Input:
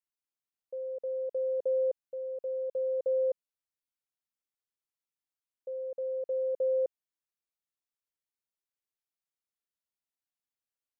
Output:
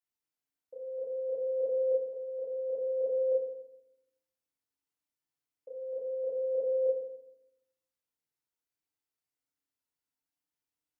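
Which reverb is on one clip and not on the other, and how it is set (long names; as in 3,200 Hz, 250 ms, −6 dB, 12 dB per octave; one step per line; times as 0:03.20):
feedback delay network reverb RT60 0.84 s, low-frequency decay 1.5×, high-frequency decay 0.65×, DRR −7.5 dB
level −7 dB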